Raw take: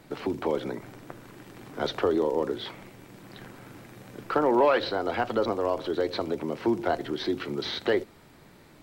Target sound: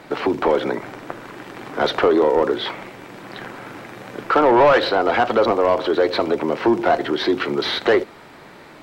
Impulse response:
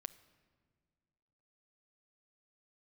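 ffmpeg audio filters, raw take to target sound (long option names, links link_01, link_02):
-filter_complex "[0:a]asplit=2[link_01][link_02];[link_02]highpass=frequency=720:poles=1,volume=17dB,asoftclip=type=tanh:threshold=-10.5dB[link_03];[link_01][link_03]amix=inputs=2:normalize=0,lowpass=frequency=1900:poles=1,volume=-6dB,volume=5.5dB"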